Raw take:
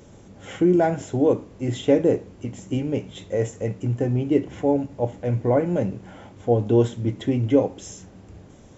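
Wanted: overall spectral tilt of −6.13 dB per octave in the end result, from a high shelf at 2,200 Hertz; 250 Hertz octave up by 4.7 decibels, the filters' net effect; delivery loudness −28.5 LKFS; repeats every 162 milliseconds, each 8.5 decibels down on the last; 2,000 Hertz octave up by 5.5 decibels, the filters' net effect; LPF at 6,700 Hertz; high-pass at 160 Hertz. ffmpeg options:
ffmpeg -i in.wav -af "highpass=160,lowpass=6700,equalizer=frequency=250:width_type=o:gain=6.5,equalizer=frequency=2000:width_type=o:gain=4,highshelf=frequency=2200:gain=5.5,aecho=1:1:162|324|486|648:0.376|0.143|0.0543|0.0206,volume=-9dB" out.wav

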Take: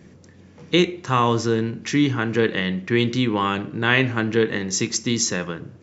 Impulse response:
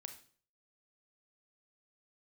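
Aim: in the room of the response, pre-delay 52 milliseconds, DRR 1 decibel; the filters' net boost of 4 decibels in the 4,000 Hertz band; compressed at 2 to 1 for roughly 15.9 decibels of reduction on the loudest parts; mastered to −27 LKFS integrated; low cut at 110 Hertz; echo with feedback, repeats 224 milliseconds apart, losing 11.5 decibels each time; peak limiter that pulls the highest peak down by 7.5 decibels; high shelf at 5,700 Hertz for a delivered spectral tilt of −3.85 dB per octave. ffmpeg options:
-filter_complex "[0:a]highpass=110,equalizer=frequency=4000:width_type=o:gain=7,highshelf=frequency=5700:gain=-4.5,acompressor=threshold=-42dB:ratio=2,alimiter=limit=-24dB:level=0:latency=1,aecho=1:1:224|448|672:0.266|0.0718|0.0194,asplit=2[link_01][link_02];[1:a]atrim=start_sample=2205,adelay=52[link_03];[link_02][link_03]afir=irnorm=-1:irlink=0,volume=4dB[link_04];[link_01][link_04]amix=inputs=2:normalize=0,volume=6.5dB"

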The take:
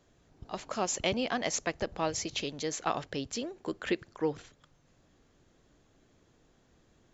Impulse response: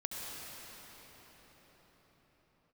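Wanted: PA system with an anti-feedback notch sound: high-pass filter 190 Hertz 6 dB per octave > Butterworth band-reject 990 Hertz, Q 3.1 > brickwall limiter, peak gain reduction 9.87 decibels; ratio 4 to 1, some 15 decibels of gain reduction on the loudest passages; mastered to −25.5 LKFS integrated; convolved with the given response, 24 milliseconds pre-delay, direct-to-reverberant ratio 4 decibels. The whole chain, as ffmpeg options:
-filter_complex "[0:a]acompressor=threshold=-44dB:ratio=4,asplit=2[link_01][link_02];[1:a]atrim=start_sample=2205,adelay=24[link_03];[link_02][link_03]afir=irnorm=-1:irlink=0,volume=-6dB[link_04];[link_01][link_04]amix=inputs=2:normalize=0,highpass=frequency=190:poles=1,asuperstop=centerf=990:order=8:qfactor=3.1,volume=23.5dB,alimiter=limit=-15dB:level=0:latency=1"

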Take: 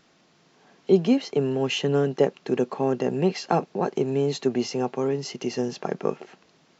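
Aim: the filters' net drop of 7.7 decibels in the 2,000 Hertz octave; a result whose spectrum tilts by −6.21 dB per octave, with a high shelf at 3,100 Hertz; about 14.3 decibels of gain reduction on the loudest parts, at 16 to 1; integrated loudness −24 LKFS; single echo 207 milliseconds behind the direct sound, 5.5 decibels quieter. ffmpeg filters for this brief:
ffmpeg -i in.wav -af "equalizer=frequency=2000:width_type=o:gain=-7,highshelf=frequency=3100:gain=-8.5,acompressor=threshold=-28dB:ratio=16,aecho=1:1:207:0.531,volume=9.5dB" out.wav

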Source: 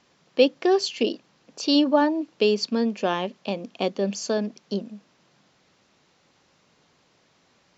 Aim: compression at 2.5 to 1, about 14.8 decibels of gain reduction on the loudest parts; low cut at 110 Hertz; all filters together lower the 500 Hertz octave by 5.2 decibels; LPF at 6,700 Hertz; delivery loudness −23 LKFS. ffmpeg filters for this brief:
ffmpeg -i in.wav -af "highpass=110,lowpass=6700,equalizer=frequency=500:width_type=o:gain=-6.5,acompressor=threshold=-40dB:ratio=2.5,volume=16dB" out.wav

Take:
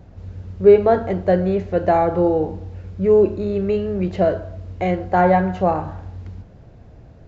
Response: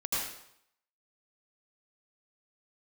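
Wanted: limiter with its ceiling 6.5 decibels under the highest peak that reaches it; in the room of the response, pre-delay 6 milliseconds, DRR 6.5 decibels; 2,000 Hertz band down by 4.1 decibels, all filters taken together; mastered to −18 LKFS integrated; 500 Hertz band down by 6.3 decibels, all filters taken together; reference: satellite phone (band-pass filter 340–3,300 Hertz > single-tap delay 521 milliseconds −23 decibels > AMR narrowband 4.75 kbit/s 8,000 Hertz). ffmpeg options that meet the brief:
-filter_complex "[0:a]equalizer=frequency=500:width_type=o:gain=-6.5,equalizer=frequency=2000:width_type=o:gain=-4.5,alimiter=limit=-13.5dB:level=0:latency=1,asplit=2[link_01][link_02];[1:a]atrim=start_sample=2205,adelay=6[link_03];[link_02][link_03]afir=irnorm=-1:irlink=0,volume=-13dB[link_04];[link_01][link_04]amix=inputs=2:normalize=0,highpass=340,lowpass=3300,aecho=1:1:521:0.0708,volume=9.5dB" -ar 8000 -c:a libopencore_amrnb -b:a 4750

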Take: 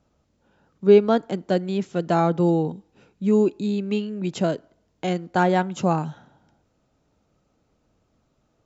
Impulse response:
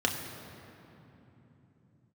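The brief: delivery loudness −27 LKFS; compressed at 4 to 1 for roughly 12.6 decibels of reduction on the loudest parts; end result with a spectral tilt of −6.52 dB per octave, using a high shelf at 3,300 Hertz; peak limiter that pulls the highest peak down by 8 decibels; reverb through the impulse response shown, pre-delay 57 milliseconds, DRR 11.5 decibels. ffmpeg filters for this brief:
-filter_complex "[0:a]highshelf=frequency=3300:gain=-7,acompressor=threshold=-24dB:ratio=4,alimiter=limit=-20dB:level=0:latency=1,asplit=2[link_01][link_02];[1:a]atrim=start_sample=2205,adelay=57[link_03];[link_02][link_03]afir=irnorm=-1:irlink=0,volume=-21.5dB[link_04];[link_01][link_04]amix=inputs=2:normalize=0,volume=4dB"

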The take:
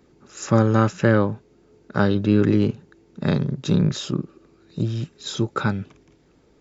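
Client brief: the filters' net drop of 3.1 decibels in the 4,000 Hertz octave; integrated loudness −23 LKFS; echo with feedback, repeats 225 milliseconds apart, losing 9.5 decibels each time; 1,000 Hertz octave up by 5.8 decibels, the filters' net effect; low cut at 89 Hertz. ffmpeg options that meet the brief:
ffmpeg -i in.wav -af "highpass=89,equalizer=frequency=1000:width_type=o:gain=8,equalizer=frequency=4000:width_type=o:gain=-4,aecho=1:1:225|450|675|900:0.335|0.111|0.0365|0.012,volume=-2dB" out.wav

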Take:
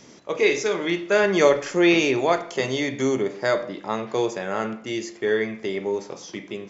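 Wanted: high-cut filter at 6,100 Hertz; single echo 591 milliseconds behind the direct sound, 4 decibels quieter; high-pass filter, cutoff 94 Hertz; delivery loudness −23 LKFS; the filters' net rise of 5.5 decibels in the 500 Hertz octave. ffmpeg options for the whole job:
ffmpeg -i in.wav -af "highpass=94,lowpass=6100,equalizer=frequency=500:width_type=o:gain=7,aecho=1:1:591:0.631,volume=-5.5dB" out.wav

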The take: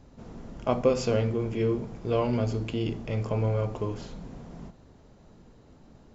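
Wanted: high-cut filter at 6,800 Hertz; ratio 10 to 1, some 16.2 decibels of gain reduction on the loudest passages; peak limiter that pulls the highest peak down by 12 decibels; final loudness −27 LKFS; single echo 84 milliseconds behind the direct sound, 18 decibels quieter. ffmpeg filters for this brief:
ffmpeg -i in.wav -af "lowpass=6800,acompressor=threshold=-34dB:ratio=10,alimiter=level_in=10.5dB:limit=-24dB:level=0:latency=1,volume=-10.5dB,aecho=1:1:84:0.126,volume=16.5dB" out.wav

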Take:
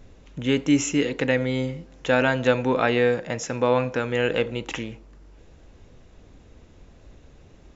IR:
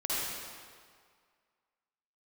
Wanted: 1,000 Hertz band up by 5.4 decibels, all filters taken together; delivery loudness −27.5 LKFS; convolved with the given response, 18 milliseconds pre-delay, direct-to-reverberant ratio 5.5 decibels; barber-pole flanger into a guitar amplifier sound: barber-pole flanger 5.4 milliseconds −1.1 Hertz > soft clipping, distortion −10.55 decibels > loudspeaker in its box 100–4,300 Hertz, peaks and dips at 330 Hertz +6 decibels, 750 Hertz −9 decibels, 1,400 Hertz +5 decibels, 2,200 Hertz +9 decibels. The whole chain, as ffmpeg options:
-filter_complex "[0:a]equalizer=frequency=1000:width_type=o:gain=7.5,asplit=2[link_01][link_02];[1:a]atrim=start_sample=2205,adelay=18[link_03];[link_02][link_03]afir=irnorm=-1:irlink=0,volume=-13dB[link_04];[link_01][link_04]amix=inputs=2:normalize=0,asplit=2[link_05][link_06];[link_06]adelay=5.4,afreqshift=-1.1[link_07];[link_05][link_07]amix=inputs=2:normalize=1,asoftclip=threshold=-19dB,highpass=100,equalizer=frequency=330:width_type=q:width=4:gain=6,equalizer=frequency=750:width_type=q:width=4:gain=-9,equalizer=frequency=1400:width_type=q:width=4:gain=5,equalizer=frequency=2200:width_type=q:width=4:gain=9,lowpass=frequency=4300:width=0.5412,lowpass=frequency=4300:width=1.3066,volume=-2dB"

